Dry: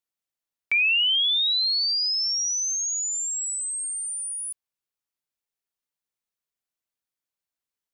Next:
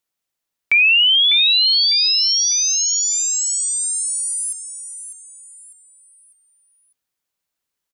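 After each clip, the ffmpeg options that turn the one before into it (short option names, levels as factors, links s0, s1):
-af "aecho=1:1:600|1200|1800|2400:0.299|0.11|0.0409|0.0151,volume=2.51"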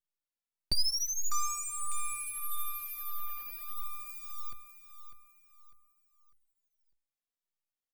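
-filter_complex "[0:a]equalizer=f=1000:t=o:w=1:g=-9,equalizer=f=2000:t=o:w=1:g=5,equalizer=f=4000:t=o:w=1:g=-6,equalizer=f=8000:t=o:w=1:g=-4,aeval=exprs='abs(val(0))':c=same,asplit=2[s0][s1];[s1]adelay=2.7,afreqshift=-1.6[s2];[s0][s2]amix=inputs=2:normalize=1,volume=0.398"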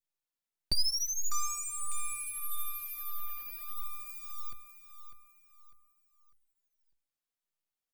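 -af "adynamicequalizer=threshold=0.00178:dfrequency=990:dqfactor=1:tfrequency=990:tqfactor=1:attack=5:release=100:ratio=0.375:range=2.5:mode=cutabove:tftype=bell"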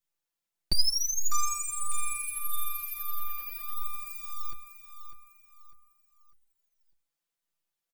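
-af "aecho=1:1:5.9:0.65,volume=1.26"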